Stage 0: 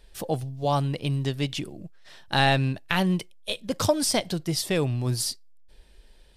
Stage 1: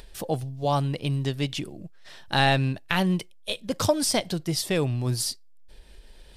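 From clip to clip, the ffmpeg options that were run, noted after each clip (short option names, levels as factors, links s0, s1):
-af "acompressor=mode=upward:threshold=0.0112:ratio=2.5"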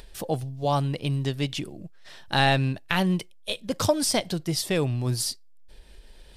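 -af anull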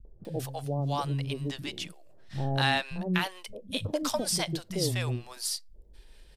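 -filter_complex "[0:a]acrossover=split=190|610[s0][s1][s2];[s1]adelay=50[s3];[s2]adelay=250[s4];[s0][s3][s4]amix=inputs=3:normalize=0,volume=0.668"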